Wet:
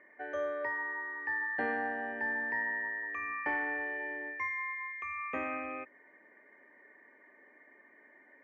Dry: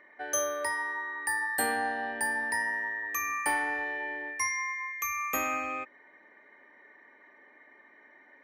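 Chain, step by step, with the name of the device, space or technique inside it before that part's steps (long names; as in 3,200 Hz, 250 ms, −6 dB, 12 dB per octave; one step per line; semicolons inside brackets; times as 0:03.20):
bass cabinet (loudspeaker in its box 68–2,200 Hz, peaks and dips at 110 Hz −7 dB, 850 Hz −6 dB, 1,300 Hz −7 dB)
level −1 dB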